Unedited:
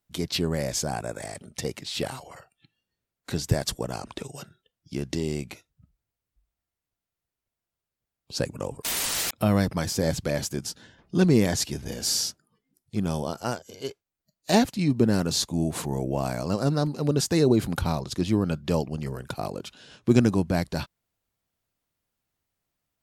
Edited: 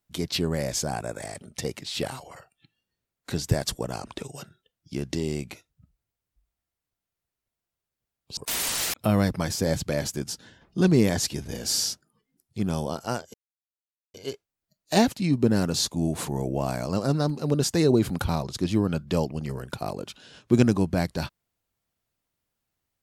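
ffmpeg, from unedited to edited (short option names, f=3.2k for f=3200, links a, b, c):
-filter_complex "[0:a]asplit=3[a][b][c];[a]atrim=end=8.372[d];[b]atrim=start=8.738:end=13.71,asetpts=PTS-STARTPTS,afade=t=out:st=4.968:d=0.004:c=hsin,apad=pad_dur=0.8[e];[c]atrim=start=13.71,asetpts=PTS-STARTPTS,afade=t=in:d=0.004:c=hsin[f];[e][f]concat=n=2:v=0:a=1[g];[d][g]acrossfade=d=0.004:c1=hsin:c2=hsin"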